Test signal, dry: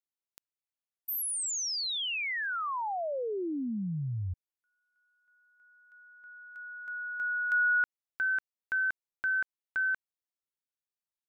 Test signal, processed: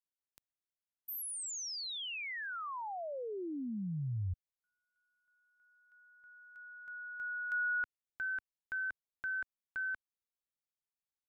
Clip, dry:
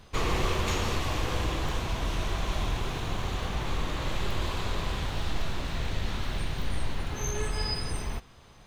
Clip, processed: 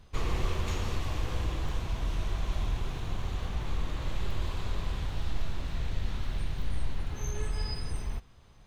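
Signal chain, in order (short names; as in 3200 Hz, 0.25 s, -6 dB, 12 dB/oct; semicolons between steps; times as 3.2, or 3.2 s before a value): low shelf 140 Hz +9 dB; gain -8 dB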